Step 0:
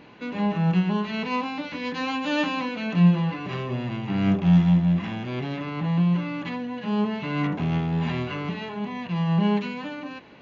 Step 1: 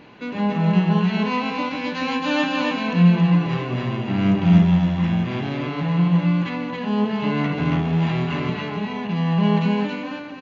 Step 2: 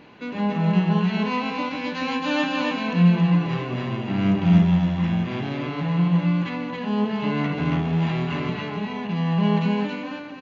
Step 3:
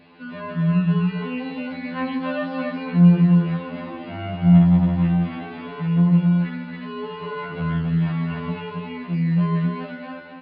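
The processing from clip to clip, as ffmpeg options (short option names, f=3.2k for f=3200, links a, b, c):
-af "aecho=1:1:148.7|274.1:0.282|0.708,volume=2.5dB"
-af "bandreject=f=60:t=h:w=6,bandreject=f=120:t=h:w=6,volume=-2dB"
-filter_complex "[0:a]acrossover=split=2600[a][b];[b]acompressor=threshold=-47dB:ratio=4:attack=1:release=60[c];[a][c]amix=inputs=2:normalize=0,aresample=11025,aresample=44100,afftfilt=real='re*2*eq(mod(b,4),0)':imag='im*2*eq(mod(b,4),0)':win_size=2048:overlap=0.75"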